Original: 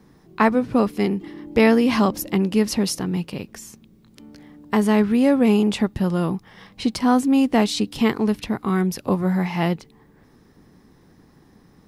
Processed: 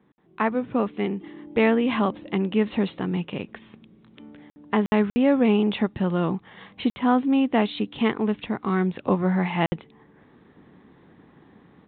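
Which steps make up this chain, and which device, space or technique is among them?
call with lost packets (HPF 170 Hz 6 dB/oct; downsampling 8000 Hz; AGC gain up to 10 dB; packet loss packets of 60 ms); gain -7.5 dB

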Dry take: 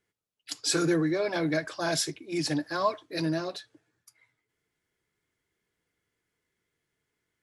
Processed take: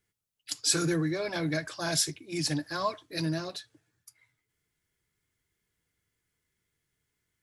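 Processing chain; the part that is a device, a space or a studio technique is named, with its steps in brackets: smiley-face EQ (low shelf 200 Hz +8.5 dB; bell 400 Hz -5 dB 2.5 oct; high shelf 6000 Hz +7.5 dB); gain -1.5 dB

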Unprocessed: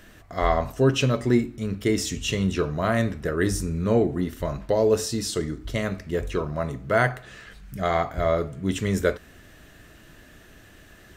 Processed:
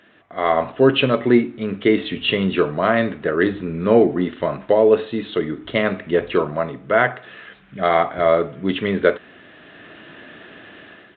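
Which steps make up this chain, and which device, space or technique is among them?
Bluetooth headset (HPF 230 Hz 12 dB/oct; AGC gain up to 12.5 dB; downsampling 8000 Hz; gain -1 dB; SBC 64 kbps 16000 Hz)

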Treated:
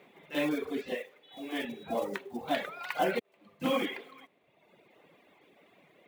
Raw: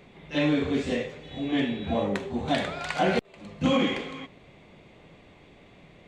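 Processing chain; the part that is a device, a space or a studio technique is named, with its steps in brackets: early digital voice recorder (BPF 290–3500 Hz; block floating point 5-bit); 0.95–1.65 HPF 380 Hz 6 dB/oct; reverb removal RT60 1.3 s; gain -3 dB

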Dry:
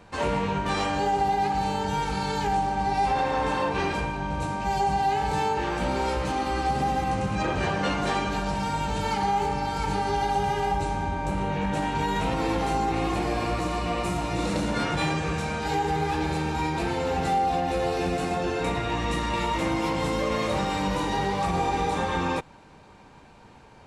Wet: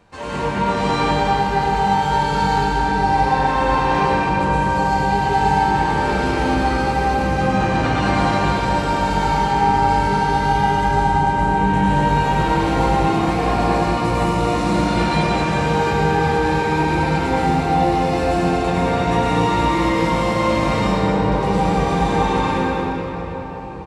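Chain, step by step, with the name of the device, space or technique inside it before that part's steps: 20.79–21.32 Bessel low-pass 1100 Hz, order 2; cave (echo 0.227 s -8.5 dB; reverb RT60 5.0 s, pre-delay 95 ms, DRR -9.5 dB); gain -3.5 dB

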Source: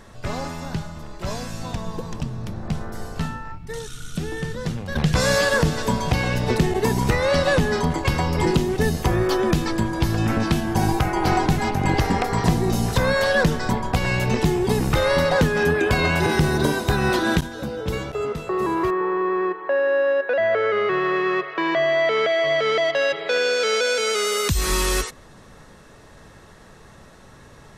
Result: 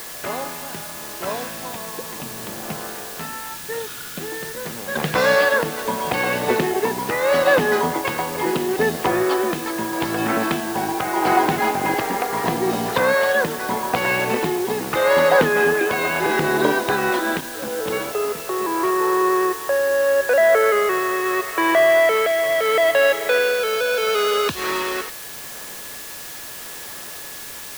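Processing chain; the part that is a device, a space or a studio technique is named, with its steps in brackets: shortwave radio (BPF 340–2900 Hz; tremolo 0.78 Hz, depth 45%; whine 1700 Hz -51 dBFS; white noise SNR 14 dB); 23.6–24.57 notch 2000 Hz, Q 5.9; gain +6 dB

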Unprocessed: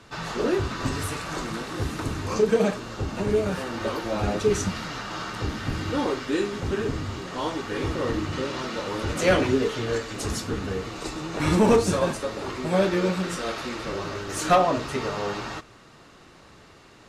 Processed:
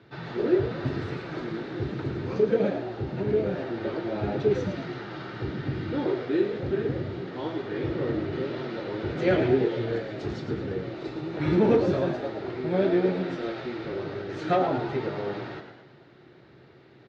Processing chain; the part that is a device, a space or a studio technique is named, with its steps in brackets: frequency-shifting delay pedal into a guitar cabinet (frequency-shifting echo 0.109 s, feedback 52%, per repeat +84 Hz, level -8.5 dB; speaker cabinet 82–3800 Hz, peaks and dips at 130 Hz +10 dB, 360 Hz +9 dB, 1100 Hz -9 dB, 2800 Hz -6 dB); gain -5 dB

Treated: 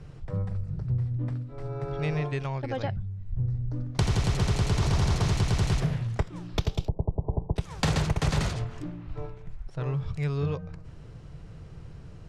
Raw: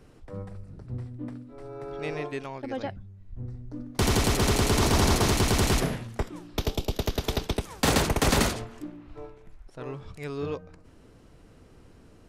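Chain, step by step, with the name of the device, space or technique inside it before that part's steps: jukebox (LPF 7000 Hz 12 dB/oct; resonant low shelf 190 Hz +6.5 dB, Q 3; compressor 3:1, threshold -28 dBFS, peak gain reduction 12 dB); 6.88–7.56 steep low-pass 990 Hz 72 dB/oct; gain +3 dB

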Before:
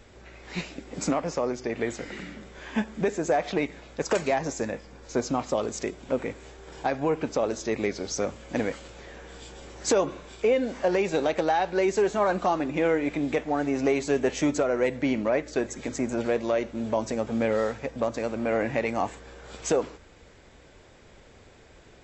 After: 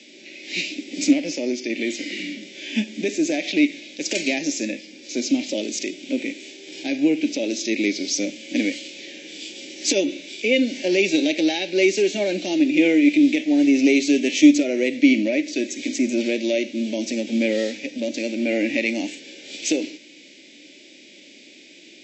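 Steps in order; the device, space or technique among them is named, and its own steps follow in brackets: HPF 150 Hz; television speaker (speaker cabinet 210–6500 Hz, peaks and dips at 300 Hz +8 dB, 460 Hz -9 dB, 700 Hz -8 dB, 1100 Hz -9 dB); harmonic-percussive split harmonic +8 dB; EQ curve 630 Hz 0 dB, 1200 Hz -27 dB, 2300 Hz +10 dB

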